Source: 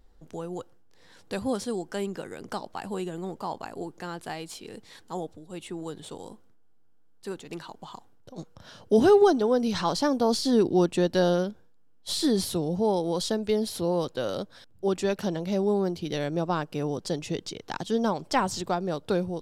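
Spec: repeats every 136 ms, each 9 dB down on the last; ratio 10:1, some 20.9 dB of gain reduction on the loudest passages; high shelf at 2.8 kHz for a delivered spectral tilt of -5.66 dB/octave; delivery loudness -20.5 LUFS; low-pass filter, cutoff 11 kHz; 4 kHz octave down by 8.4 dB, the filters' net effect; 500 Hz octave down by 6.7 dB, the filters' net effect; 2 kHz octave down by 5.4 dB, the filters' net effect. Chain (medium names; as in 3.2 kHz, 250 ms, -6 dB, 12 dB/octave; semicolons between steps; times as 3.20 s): low-pass 11 kHz; peaking EQ 500 Hz -8.5 dB; peaking EQ 2 kHz -3.5 dB; treble shelf 2.8 kHz -7.5 dB; peaking EQ 4 kHz -3 dB; compression 10:1, threshold -42 dBFS; feedback delay 136 ms, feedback 35%, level -9 dB; trim +26 dB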